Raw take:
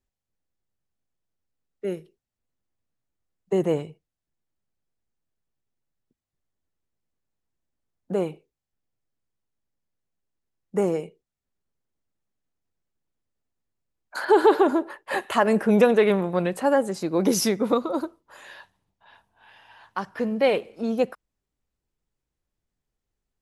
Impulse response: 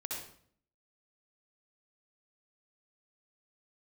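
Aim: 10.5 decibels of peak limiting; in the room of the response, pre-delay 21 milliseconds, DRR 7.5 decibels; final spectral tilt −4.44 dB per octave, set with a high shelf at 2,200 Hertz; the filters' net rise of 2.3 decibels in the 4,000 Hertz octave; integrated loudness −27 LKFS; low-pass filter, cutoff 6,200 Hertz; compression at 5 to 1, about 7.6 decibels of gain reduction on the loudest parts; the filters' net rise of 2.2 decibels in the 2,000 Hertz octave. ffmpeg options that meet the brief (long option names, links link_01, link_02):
-filter_complex "[0:a]lowpass=6200,equalizer=frequency=2000:width_type=o:gain=3.5,highshelf=frequency=2200:gain=-4.5,equalizer=frequency=4000:width_type=o:gain=7.5,acompressor=threshold=-20dB:ratio=5,alimiter=limit=-21dB:level=0:latency=1,asplit=2[link_01][link_02];[1:a]atrim=start_sample=2205,adelay=21[link_03];[link_02][link_03]afir=irnorm=-1:irlink=0,volume=-8.5dB[link_04];[link_01][link_04]amix=inputs=2:normalize=0,volume=4dB"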